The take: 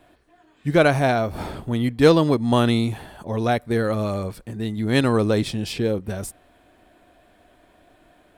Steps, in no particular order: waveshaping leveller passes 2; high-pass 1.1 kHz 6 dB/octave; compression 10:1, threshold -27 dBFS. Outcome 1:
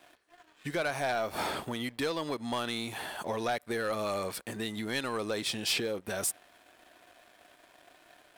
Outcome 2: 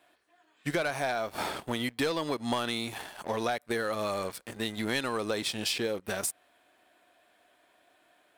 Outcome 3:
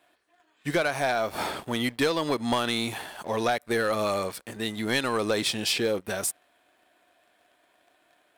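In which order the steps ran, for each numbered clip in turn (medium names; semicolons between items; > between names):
compression > high-pass > waveshaping leveller; high-pass > waveshaping leveller > compression; high-pass > compression > waveshaping leveller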